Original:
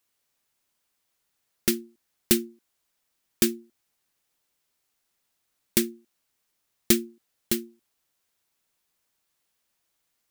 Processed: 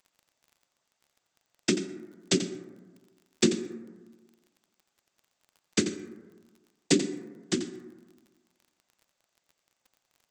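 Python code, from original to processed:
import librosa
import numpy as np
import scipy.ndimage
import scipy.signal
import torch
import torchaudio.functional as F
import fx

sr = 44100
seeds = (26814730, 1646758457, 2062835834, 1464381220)

y = fx.peak_eq(x, sr, hz=710.0, db=4.5, octaves=0.67)
y = fx.noise_vocoder(y, sr, seeds[0], bands=16)
y = fx.dmg_crackle(y, sr, seeds[1], per_s=22.0, level_db=-46.0)
y = y + 10.0 ** (-11.5 / 20.0) * np.pad(y, (int(87 * sr / 1000.0), 0))[:len(y)]
y = fx.rev_plate(y, sr, seeds[2], rt60_s=1.4, hf_ratio=0.25, predelay_ms=110, drr_db=14.5)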